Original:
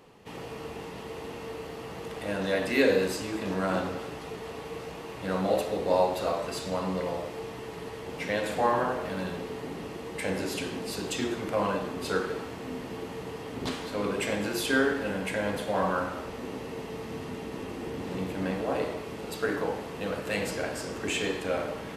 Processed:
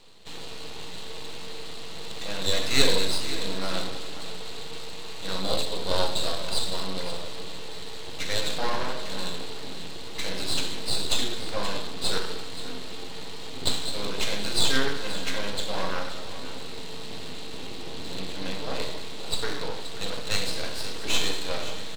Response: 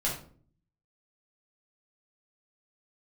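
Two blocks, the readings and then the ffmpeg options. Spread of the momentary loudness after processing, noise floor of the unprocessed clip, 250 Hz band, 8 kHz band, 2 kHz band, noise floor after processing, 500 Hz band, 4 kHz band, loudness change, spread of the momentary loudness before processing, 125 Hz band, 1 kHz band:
13 LU, −41 dBFS, −5.0 dB, +7.5 dB, −0.5 dB, −32 dBFS, −4.5 dB, +11.5 dB, +1.0 dB, 13 LU, −1.0 dB, −3.0 dB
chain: -filter_complex "[0:a]lowpass=frequency=4000:width_type=q:width=6.8,aemphasis=mode=production:type=75kf,aeval=exprs='max(val(0),0)':channel_layout=same,aecho=1:1:527:0.211,asplit=2[link_01][link_02];[1:a]atrim=start_sample=2205,lowpass=frequency=1900:width=0.5412,lowpass=frequency=1900:width=1.3066[link_03];[link_02][link_03]afir=irnorm=-1:irlink=0,volume=-18.5dB[link_04];[link_01][link_04]amix=inputs=2:normalize=0,volume=-1dB"

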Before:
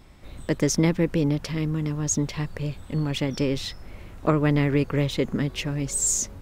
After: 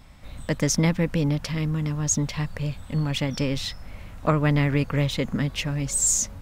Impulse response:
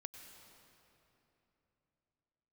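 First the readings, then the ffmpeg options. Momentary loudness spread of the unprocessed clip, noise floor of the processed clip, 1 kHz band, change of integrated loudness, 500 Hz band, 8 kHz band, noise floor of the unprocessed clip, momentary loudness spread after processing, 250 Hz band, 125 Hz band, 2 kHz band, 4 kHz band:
9 LU, −42 dBFS, +1.5 dB, +0.5 dB, −2.5 dB, +2.0 dB, −44 dBFS, 9 LU, −1.0 dB, +1.5 dB, +2.0 dB, +2.0 dB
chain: -af "equalizer=frequency=370:width=3:gain=-12.5,volume=2dB"

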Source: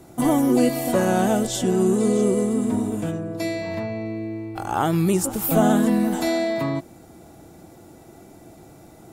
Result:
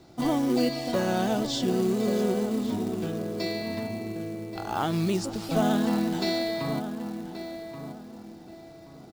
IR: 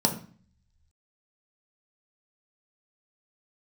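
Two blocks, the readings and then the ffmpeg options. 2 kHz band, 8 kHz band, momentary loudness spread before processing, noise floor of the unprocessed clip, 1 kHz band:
−4.5 dB, −10.5 dB, 11 LU, −47 dBFS, −5.5 dB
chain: -filter_complex "[0:a]lowpass=frequency=4600:width_type=q:width=3.1,asplit=2[link_01][link_02];[link_02]adelay=1129,lowpass=frequency=1900:poles=1,volume=-9dB,asplit=2[link_03][link_04];[link_04]adelay=1129,lowpass=frequency=1900:poles=1,volume=0.32,asplit=2[link_05][link_06];[link_06]adelay=1129,lowpass=frequency=1900:poles=1,volume=0.32,asplit=2[link_07][link_08];[link_08]adelay=1129,lowpass=frequency=1900:poles=1,volume=0.32[link_09];[link_01][link_03][link_05][link_07][link_09]amix=inputs=5:normalize=0,acrusher=bits=5:mode=log:mix=0:aa=0.000001,volume=-6.5dB"

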